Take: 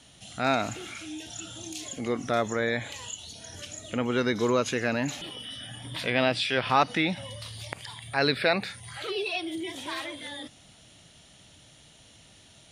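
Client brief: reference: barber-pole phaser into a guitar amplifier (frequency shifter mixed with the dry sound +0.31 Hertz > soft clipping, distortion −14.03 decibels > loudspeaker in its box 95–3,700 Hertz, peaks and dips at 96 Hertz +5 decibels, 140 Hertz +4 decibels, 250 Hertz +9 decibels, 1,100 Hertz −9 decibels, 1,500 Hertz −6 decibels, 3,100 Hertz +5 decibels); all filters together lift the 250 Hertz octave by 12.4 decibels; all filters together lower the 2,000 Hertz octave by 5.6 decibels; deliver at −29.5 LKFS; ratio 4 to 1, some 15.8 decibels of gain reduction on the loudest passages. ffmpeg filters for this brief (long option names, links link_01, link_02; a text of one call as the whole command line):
ffmpeg -i in.wav -filter_complex "[0:a]equalizer=frequency=250:width_type=o:gain=6.5,equalizer=frequency=2000:width_type=o:gain=-5,acompressor=threshold=-38dB:ratio=4,asplit=2[link_01][link_02];[link_02]afreqshift=0.31[link_03];[link_01][link_03]amix=inputs=2:normalize=1,asoftclip=threshold=-38dB,highpass=95,equalizer=frequency=96:width_type=q:width=4:gain=5,equalizer=frequency=140:width_type=q:width=4:gain=4,equalizer=frequency=250:width_type=q:width=4:gain=9,equalizer=frequency=1100:width_type=q:width=4:gain=-9,equalizer=frequency=1500:width_type=q:width=4:gain=-6,equalizer=frequency=3100:width_type=q:width=4:gain=5,lowpass=frequency=3700:width=0.5412,lowpass=frequency=3700:width=1.3066,volume=13.5dB" out.wav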